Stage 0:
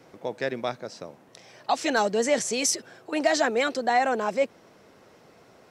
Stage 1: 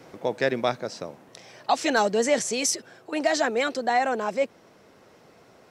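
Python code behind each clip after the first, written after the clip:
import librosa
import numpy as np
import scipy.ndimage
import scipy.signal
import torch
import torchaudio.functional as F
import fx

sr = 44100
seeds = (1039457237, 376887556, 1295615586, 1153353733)

y = fx.rider(x, sr, range_db=5, speed_s=2.0)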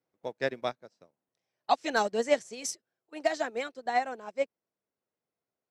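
y = fx.upward_expand(x, sr, threshold_db=-42.0, expansion=2.5)
y = y * librosa.db_to_amplitude(-1.0)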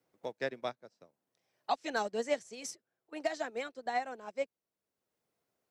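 y = fx.band_squash(x, sr, depth_pct=40)
y = y * librosa.db_to_amplitude(-5.5)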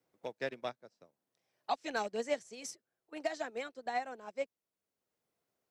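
y = fx.rattle_buzz(x, sr, strikes_db=-47.0, level_db=-37.0)
y = y * librosa.db_to_amplitude(-2.0)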